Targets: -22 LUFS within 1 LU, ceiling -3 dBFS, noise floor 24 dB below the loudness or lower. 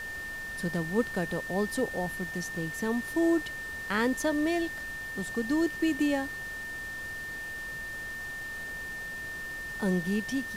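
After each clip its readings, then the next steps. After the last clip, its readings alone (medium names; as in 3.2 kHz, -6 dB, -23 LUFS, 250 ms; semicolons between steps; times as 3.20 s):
steady tone 1.8 kHz; tone level -36 dBFS; noise floor -39 dBFS; noise floor target -56 dBFS; loudness -31.5 LUFS; peak level -14.5 dBFS; loudness target -22.0 LUFS
-> band-stop 1.8 kHz, Q 30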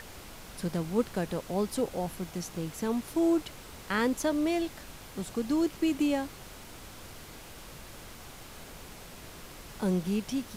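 steady tone not found; noise floor -48 dBFS; noise floor target -55 dBFS
-> noise print and reduce 7 dB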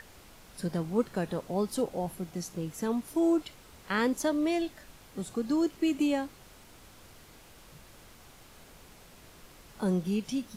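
noise floor -54 dBFS; noise floor target -55 dBFS
-> noise print and reduce 6 dB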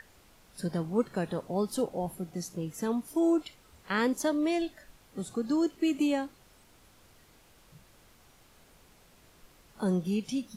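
noise floor -60 dBFS; loudness -31.0 LUFS; peak level -14.5 dBFS; loudness target -22.0 LUFS
-> trim +9 dB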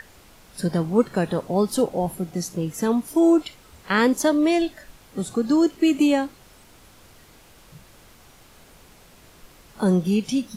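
loudness -22.0 LUFS; peak level -5.5 dBFS; noise floor -51 dBFS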